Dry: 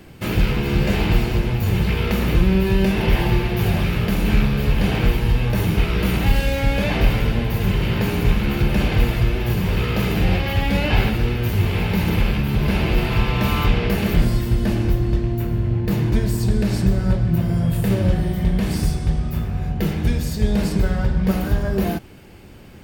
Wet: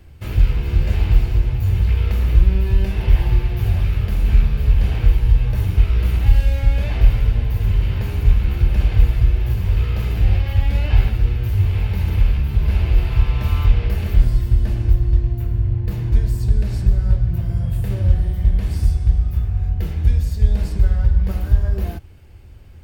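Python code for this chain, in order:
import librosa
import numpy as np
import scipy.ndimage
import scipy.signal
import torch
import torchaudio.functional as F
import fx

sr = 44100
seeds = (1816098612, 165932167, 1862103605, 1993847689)

y = fx.low_shelf_res(x, sr, hz=120.0, db=13.0, q=1.5)
y = F.gain(torch.from_numpy(y), -9.0).numpy()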